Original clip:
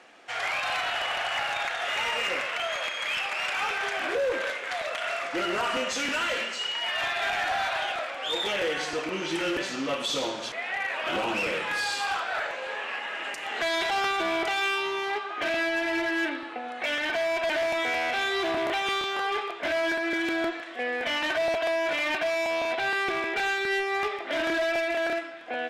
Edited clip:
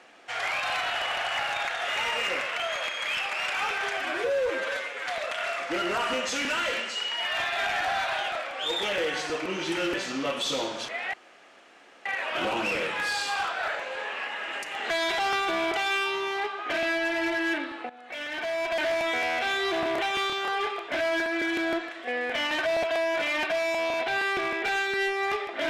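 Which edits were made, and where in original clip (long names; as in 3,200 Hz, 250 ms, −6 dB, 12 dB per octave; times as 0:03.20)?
0:03.97–0:04.70: time-stretch 1.5×
0:10.77: splice in room tone 0.92 s
0:16.61–0:17.56: fade in linear, from −14.5 dB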